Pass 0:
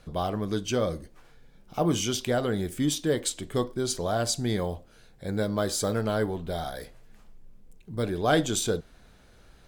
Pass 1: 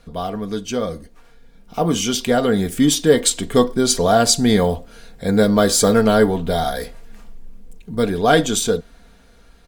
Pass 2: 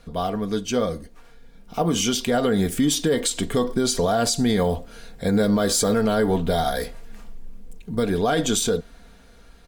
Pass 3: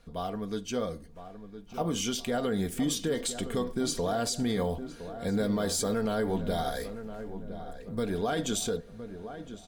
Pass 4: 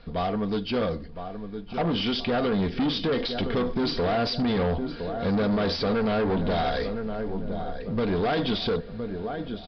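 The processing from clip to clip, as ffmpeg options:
ffmpeg -i in.wav -af "aecho=1:1:4.3:0.51,dynaudnorm=framelen=680:gausssize=7:maxgain=11.5dB,volume=2.5dB" out.wav
ffmpeg -i in.wav -af "alimiter=limit=-12dB:level=0:latency=1:release=92" out.wav
ffmpeg -i in.wav -filter_complex "[0:a]asplit=2[link_01][link_02];[link_02]adelay=1013,lowpass=frequency=1500:poles=1,volume=-11dB,asplit=2[link_03][link_04];[link_04]adelay=1013,lowpass=frequency=1500:poles=1,volume=0.49,asplit=2[link_05][link_06];[link_06]adelay=1013,lowpass=frequency=1500:poles=1,volume=0.49,asplit=2[link_07][link_08];[link_08]adelay=1013,lowpass=frequency=1500:poles=1,volume=0.49,asplit=2[link_09][link_10];[link_10]adelay=1013,lowpass=frequency=1500:poles=1,volume=0.49[link_11];[link_01][link_03][link_05][link_07][link_09][link_11]amix=inputs=6:normalize=0,volume=-9dB" out.wav
ffmpeg -i in.wav -filter_complex "[0:a]asplit=2[link_01][link_02];[link_02]acrusher=bits=4:mode=log:mix=0:aa=0.000001,volume=-7.5dB[link_03];[link_01][link_03]amix=inputs=2:normalize=0,asoftclip=type=tanh:threshold=-28dB,aresample=11025,aresample=44100,volume=7dB" out.wav

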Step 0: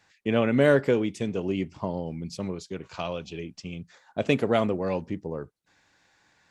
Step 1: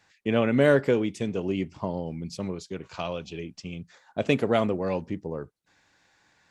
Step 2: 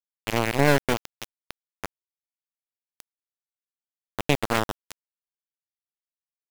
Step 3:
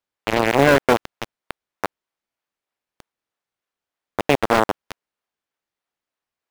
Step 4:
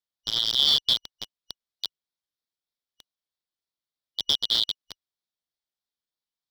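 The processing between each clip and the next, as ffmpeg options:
ffmpeg -i in.wav -af anull out.wav
ffmpeg -i in.wav -af "aeval=exprs='0.473*(cos(1*acos(clip(val(0)/0.473,-1,1)))-cos(1*PI/2))+0.075*(cos(3*acos(clip(val(0)/0.473,-1,1)))-cos(3*PI/2))+0.0211*(cos(6*acos(clip(val(0)/0.473,-1,1)))-cos(6*PI/2))':channel_layout=same,aeval=exprs='val(0)*gte(abs(val(0)),0.0891)':channel_layout=same,volume=4dB" out.wav
ffmpeg -i in.wav -filter_complex "[0:a]asplit=2[link_01][link_02];[link_02]highpass=frequency=720:poles=1,volume=24dB,asoftclip=type=tanh:threshold=-1.5dB[link_03];[link_01][link_03]amix=inputs=2:normalize=0,lowpass=frequency=1300:poles=1,volume=-6dB,asplit=2[link_04][link_05];[link_05]acrusher=samples=23:mix=1:aa=0.000001:lfo=1:lforange=36.8:lforate=3.2,volume=-9dB[link_06];[link_04][link_06]amix=inputs=2:normalize=0" out.wav
ffmpeg -i in.wav -af "afftfilt=real='real(if(lt(b,272),68*(eq(floor(b/68),0)*2+eq(floor(b/68),1)*3+eq(floor(b/68),2)*0+eq(floor(b/68),3)*1)+mod(b,68),b),0)':imag='imag(if(lt(b,272),68*(eq(floor(b/68),0)*2+eq(floor(b/68),1)*3+eq(floor(b/68),2)*0+eq(floor(b/68),3)*1)+mod(b,68),b),0)':win_size=2048:overlap=0.75,volume=-7dB" out.wav

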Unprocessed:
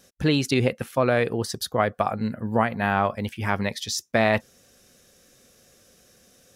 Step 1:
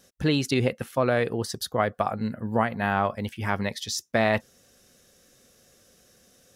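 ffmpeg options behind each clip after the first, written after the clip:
ffmpeg -i in.wav -af "bandreject=frequency=2400:width=22,volume=-2dB" out.wav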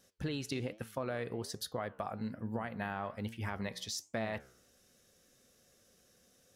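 ffmpeg -i in.wav -af "alimiter=limit=-13.5dB:level=0:latency=1:release=21,acompressor=threshold=-25dB:ratio=6,flanger=delay=8.7:depth=8:regen=86:speed=1.2:shape=sinusoidal,volume=-4dB" out.wav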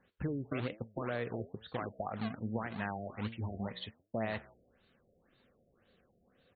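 ffmpeg -i in.wav -filter_complex "[0:a]acrossover=split=610[link_01][link_02];[link_01]acrusher=samples=28:mix=1:aa=0.000001:lfo=1:lforange=44.8:lforate=2.3[link_03];[link_02]aecho=1:1:172:0.112[link_04];[link_03][link_04]amix=inputs=2:normalize=0,afftfilt=real='re*lt(b*sr/1024,700*pow(4600/700,0.5+0.5*sin(2*PI*1.9*pts/sr)))':imag='im*lt(b*sr/1024,700*pow(4600/700,0.5+0.5*sin(2*PI*1.9*pts/sr)))':win_size=1024:overlap=0.75,volume=1.5dB" out.wav

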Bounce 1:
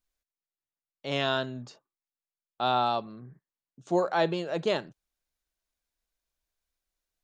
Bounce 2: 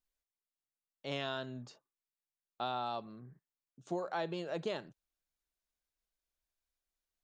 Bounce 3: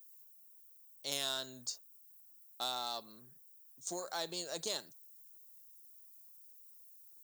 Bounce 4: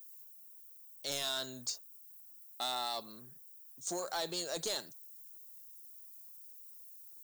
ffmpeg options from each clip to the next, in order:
ffmpeg -i in.wav -af "acompressor=threshold=-27dB:ratio=6,volume=-6dB" out.wav
ffmpeg -i in.wav -af "aeval=exprs='0.0708*(cos(1*acos(clip(val(0)/0.0708,-1,1)))-cos(1*PI/2))+0.00178*(cos(6*acos(clip(val(0)/0.0708,-1,1)))-cos(6*PI/2))':channel_layout=same,aemphasis=mode=production:type=bsi,aexciter=amount=4.4:drive=8.2:freq=4000,volume=-4dB" out.wav
ffmpeg -i in.wav -af "asoftclip=type=tanh:threshold=-34dB,volume=5dB" out.wav

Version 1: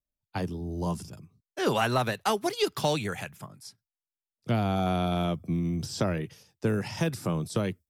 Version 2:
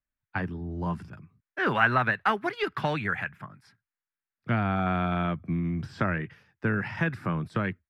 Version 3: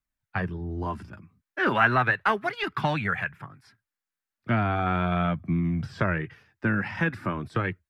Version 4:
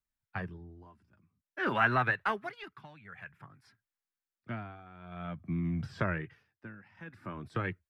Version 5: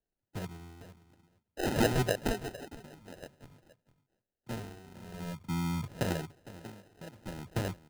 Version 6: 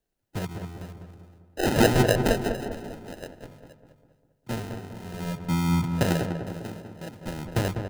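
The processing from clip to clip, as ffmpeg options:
ffmpeg -i in.wav -af "firequalizer=gain_entry='entry(240,0);entry(480,-5);entry(1600,11);entry(3200,-6);entry(6300,-21)':delay=0.05:min_phase=1" out.wav
ffmpeg -i in.wav -af "flanger=delay=0.8:depth=3.2:regen=-46:speed=0.36:shape=triangular,volume=6dB" out.wav
ffmpeg -i in.wav -af "tremolo=f=0.51:d=0.92,volume=-5.5dB" out.wav
ffmpeg -i in.wav -af "aecho=1:1:458:0.15,acrusher=samples=39:mix=1:aa=0.000001" out.wav
ffmpeg -i in.wav -filter_complex "[0:a]asplit=2[link_01][link_02];[link_02]adelay=199,lowpass=frequency=1500:poles=1,volume=-6dB,asplit=2[link_03][link_04];[link_04]adelay=199,lowpass=frequency=1500:poles=1,volume=0.51,asplit=2[link_05][link_06];[link_06]adelay=199,lowpass=frequency=1500:poles=1,volume=0.51,asplit=2[link_07][link_08];[link_08]adelay=199,lowpass=frequency=1500:poles=1,volume=0.51,asplit=2[link_09][link_10];[link_10]adelay=199,lowpass=frequency=1500:poles=1,volume=0.51,asplit=2[link_11][link_12];[link_12]adelay=199,lowpass=frequency=1500:poles=1,volume=0.51[link_13];[link_01][link_03][link_05][link_07][link_09][link_11][link_13]amix=inputs=7:normalize=0,volume=7.5dB" out.wav

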